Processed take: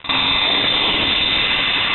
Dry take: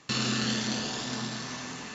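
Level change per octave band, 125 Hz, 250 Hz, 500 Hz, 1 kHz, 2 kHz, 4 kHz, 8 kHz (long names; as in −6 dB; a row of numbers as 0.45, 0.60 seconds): +3.5 dB, +3.5 dB, +12.0 dB, +15.5 dB, +18.0 dB, +19.0 dB, can't be measured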